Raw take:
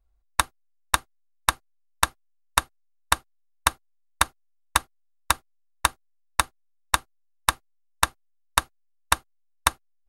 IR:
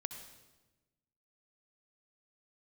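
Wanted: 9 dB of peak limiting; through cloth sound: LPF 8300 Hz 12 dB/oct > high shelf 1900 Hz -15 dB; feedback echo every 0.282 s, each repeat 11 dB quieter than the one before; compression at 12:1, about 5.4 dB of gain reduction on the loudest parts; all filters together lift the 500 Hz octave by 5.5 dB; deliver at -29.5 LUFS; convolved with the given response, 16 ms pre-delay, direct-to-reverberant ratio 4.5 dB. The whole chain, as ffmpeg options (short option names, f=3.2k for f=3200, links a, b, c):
-filter_complex "[0:a]equalizer=f=500:t=o:g=9,acompressor=threshold=-20dB:ratio=12,alimiter=limit=-13.5dB:level=0:latency=1,aecho=1:1:282|564|846:0.282|0.0789|0.0221,asplit=2[a][b];[1:a]atrim=start_sample=2205,adelay=16[c];[b][c]afir=irnorm=-1:irlink=0,volume=-3dB[d];[a][d]amix=inputs=2:normalize=0,lowpass=8.3k,highshelf=f=1.9k:g=-15,volume=15dB"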